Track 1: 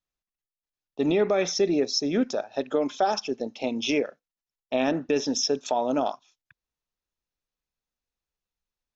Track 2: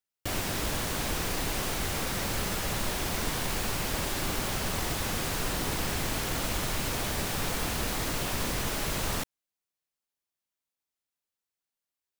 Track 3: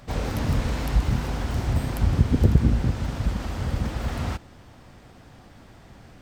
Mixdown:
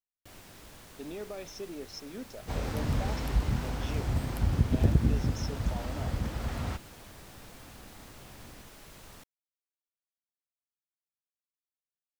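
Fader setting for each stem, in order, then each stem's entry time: -18.0, -20.0, -6.0 dB; 0.00, 0.00, 2.40 s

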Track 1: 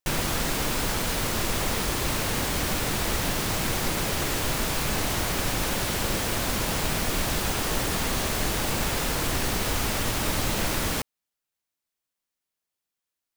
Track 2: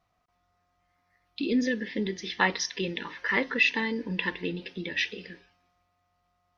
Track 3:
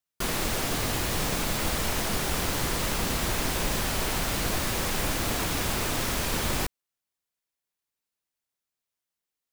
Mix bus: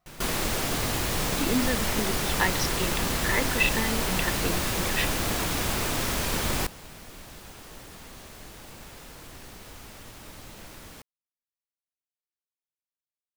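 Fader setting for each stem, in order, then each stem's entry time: -18.5, -1.5, +0.5 dB; 0.00, 0.00, 0.00 s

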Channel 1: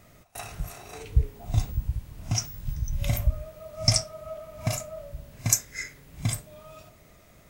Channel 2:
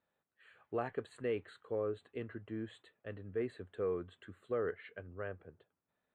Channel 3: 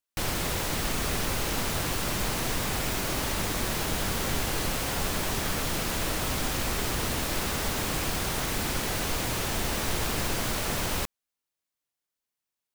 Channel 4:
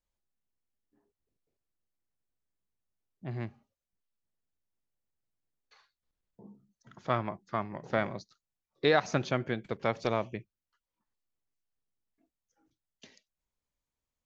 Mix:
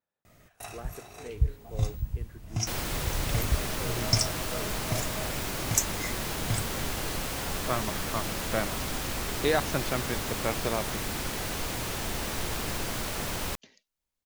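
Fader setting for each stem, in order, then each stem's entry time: -3.5, -6.5, -3.5, -1.0 dB; 0.25, 0.00, 2.50, 0.60 s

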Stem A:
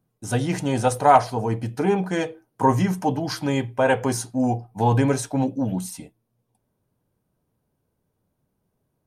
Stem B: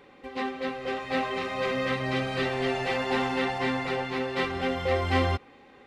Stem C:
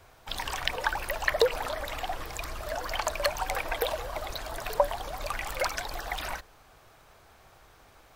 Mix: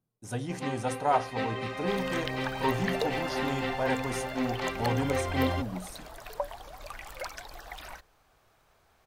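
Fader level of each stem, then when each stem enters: -11.0, -5.0, -9.0 dB; 0.00, 0.25, 1.60 s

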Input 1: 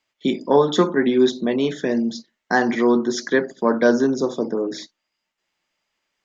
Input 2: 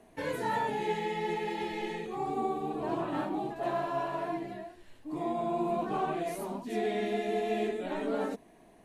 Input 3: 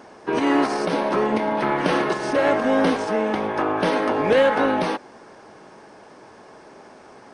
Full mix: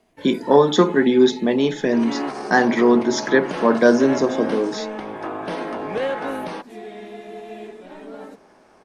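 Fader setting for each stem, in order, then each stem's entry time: +2.0, -5.0, -7.5 dB; 0.00, 0.00, 1.65 s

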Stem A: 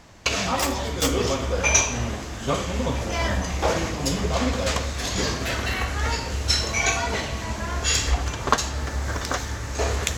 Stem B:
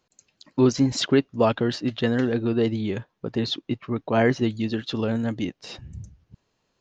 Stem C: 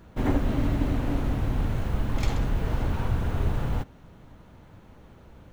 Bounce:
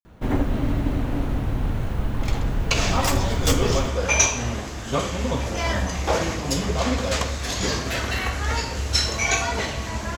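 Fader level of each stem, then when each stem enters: +0.5 dB, off, +2.0 dB; 2.45 s, off, 0.05 s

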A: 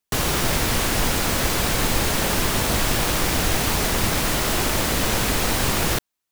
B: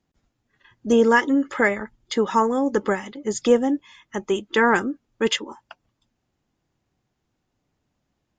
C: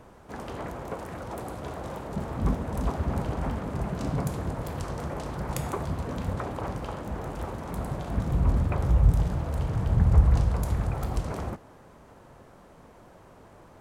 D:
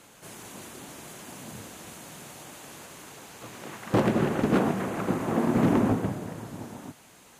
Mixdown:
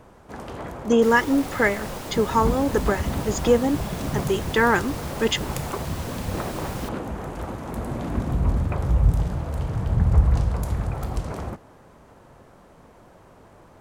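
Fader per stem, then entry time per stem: -16.5, -1.0, +1.5, -10.0 dB; 0.90, 0.00, 0.00, 2.40 s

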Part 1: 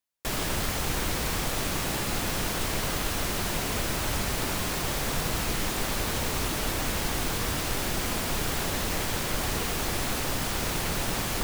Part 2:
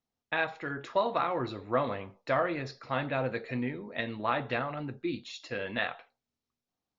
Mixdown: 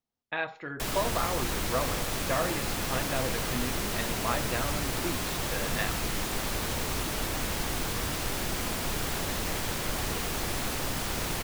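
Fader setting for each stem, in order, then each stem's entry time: -2.5, -2.0 dB; 0.55, 0.00 s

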